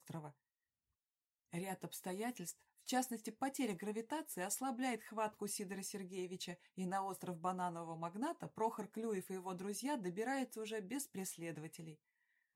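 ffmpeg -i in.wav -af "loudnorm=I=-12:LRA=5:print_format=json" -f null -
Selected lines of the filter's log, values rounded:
"input_i" : "-43.9",
"input_tp" : "-25.5",
"input_lra" : "2.5",
"input_thresh" : "-54.1",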